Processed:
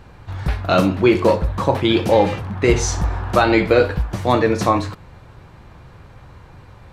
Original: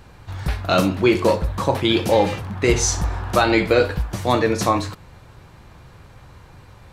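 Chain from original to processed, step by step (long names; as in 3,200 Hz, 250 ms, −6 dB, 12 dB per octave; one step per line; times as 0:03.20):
high-shelf EQ 4,200 Hz −9 dB
level +2.5 dB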